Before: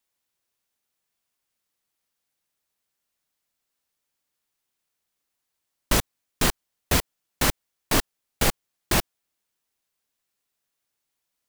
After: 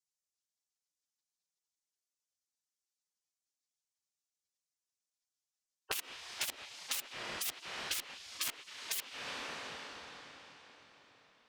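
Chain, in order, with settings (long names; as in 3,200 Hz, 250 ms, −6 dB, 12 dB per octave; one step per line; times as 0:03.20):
in parallel at −5 dB: soft clipping −21 dBFS, distortion −10 dB
on the sum: mains-hum notches 50/100/150/200 Hz
low-pass that shuts in the quiet parts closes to 2,400 Hz, open at −17 dBFS
hard clipping −22 dBFS, distortion −7 dB
on a send at −13.5 dB: convolution reverb RT60 4.4 s, pre-delay 65 ms
on the sum: gate on every frequency bin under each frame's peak −20 dB weak
dynamic equaliser 2,800 Hz, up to +6 dB, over −53 dBFS, Q 1.5
downward compressor 6 to 1, threshold −47 dBFS, peak gain reduction 20.5 dB
level +10 dB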